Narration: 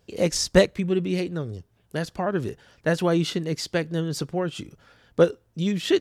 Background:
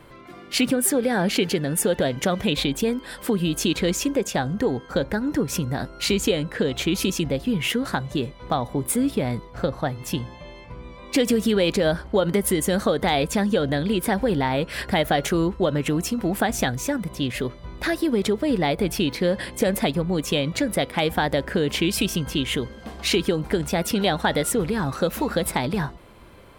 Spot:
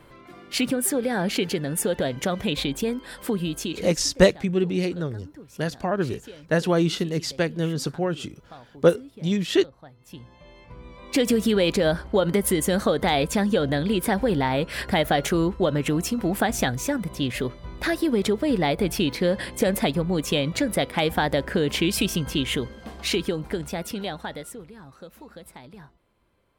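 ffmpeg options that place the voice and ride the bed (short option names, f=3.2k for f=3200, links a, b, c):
-filter_complex "[0:a]adelay=3650,volume=1dB[a];[1:a]volume=18dB,afade=t=out:st=3.35:d=0.69:silence=0.11885,afade=t=in:st=10.03:d=1.27:silence=0.0891251,afade=t=out:st=22.47:d=2.21:silence=0.1[b];[a][b]amix=inputs=2:normalize=0"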